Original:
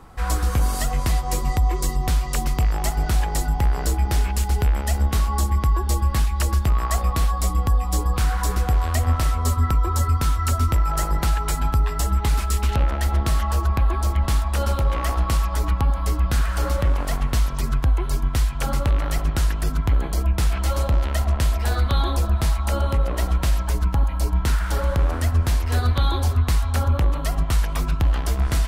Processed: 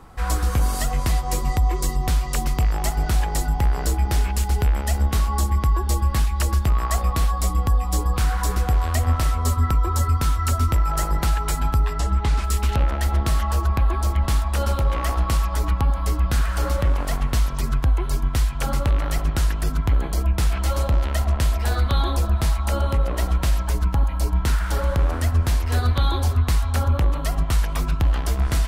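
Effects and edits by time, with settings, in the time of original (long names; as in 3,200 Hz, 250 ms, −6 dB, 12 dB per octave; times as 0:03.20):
0:11.93–0:12.44: high-frequency loss of the air 63 metres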